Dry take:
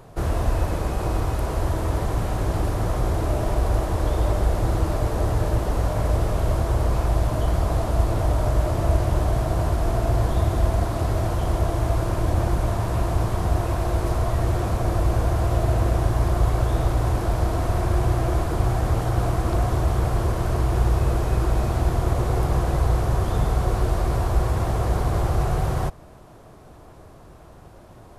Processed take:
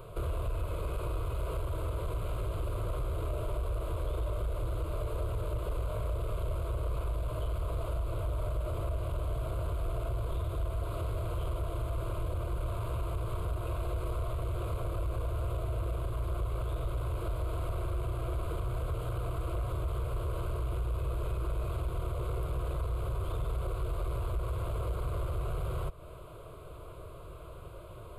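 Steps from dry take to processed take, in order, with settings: compressor 3:1, threshold -31 dBFS, peak gain reduction 13 dB; soft clip -27.5 dBFS, distortion -15 dB; fixed phaser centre 1200 Hz, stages 8; gain +2 dB

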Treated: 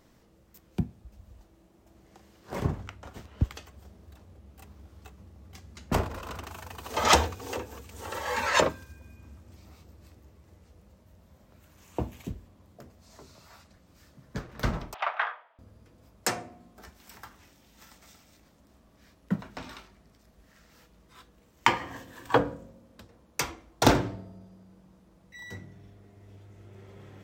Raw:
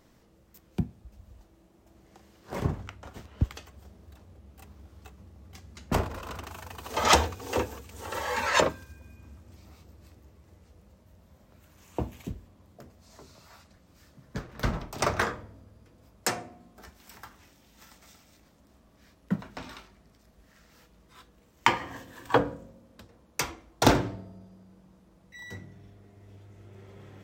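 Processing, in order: 7.35–8.26 compressor 12:1, threshold -31 dBFS, peak gain reduction 9.5 dB; 14.94–15.59 Chebyshev band-pass 730–3200 Hz, order 3

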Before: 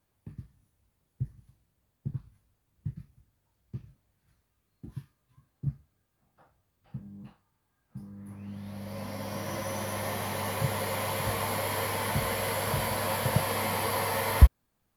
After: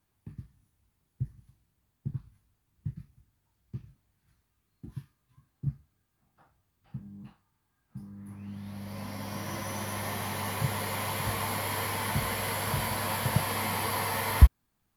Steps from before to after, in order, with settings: bell 540 Hz -7 dB 0.54 oct

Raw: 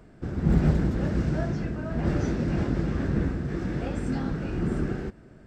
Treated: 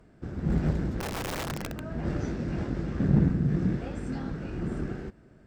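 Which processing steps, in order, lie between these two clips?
3–3.76 bell 160 Hz +13 dB 1.4 oct; added harmonics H 4 -21 dB, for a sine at -7 dBFS; 1–1.84 wrapped overs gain 22.5 dB; gain -5 dB

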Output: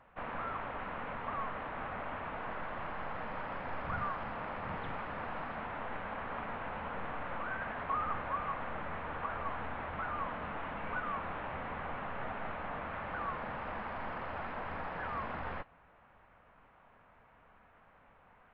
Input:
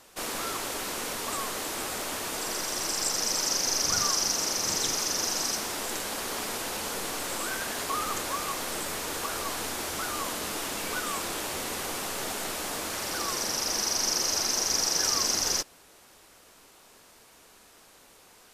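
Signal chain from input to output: Gaussian blur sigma 4.9 samples; bell 360 Hz -15 dB 1 oct; gain +1.5 dB; Vorbis 64 kbps 16000 Hz

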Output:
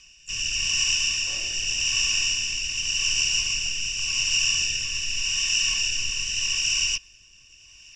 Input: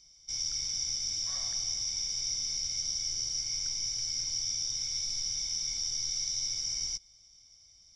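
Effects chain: harmoniser -12 st 0 dB, +4 st -12 dB, +5 st -15 dB; rotary speaker horn 0.85 Hz; gain +8 dB

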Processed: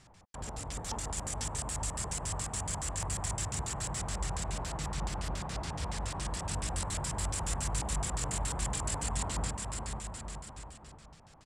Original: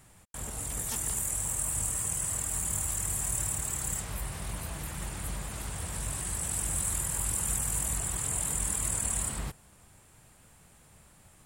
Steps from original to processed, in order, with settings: bouncing-ball echo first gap 0.49 s, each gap 0.8×, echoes 5; LFO low-pass square 7.1 Hz 910–5300 Hz; gain -1.5 dB

